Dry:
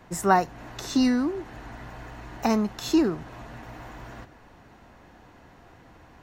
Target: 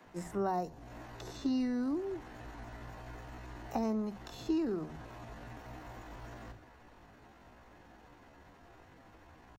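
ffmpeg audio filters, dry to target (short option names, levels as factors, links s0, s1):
-filter_complex "[0:a]atempo=0.65,acrossover=split=850|3700[s0][s1][s2];[s0]acompressor=threshold=0.0562:ratio=4[s3];[s1]acompressor=threshold=0.00355:ratio=4[s4];[s2]acompressor=threshold=0.002:ratio=4[s5];[s3][s4][s5]amix=inputs=3:normalize=0,acrossover=split=150[s6][s7];[s6]adelay=50[s8];[s8][s7]amix=inputs=2:normalize=0,volume=0.562"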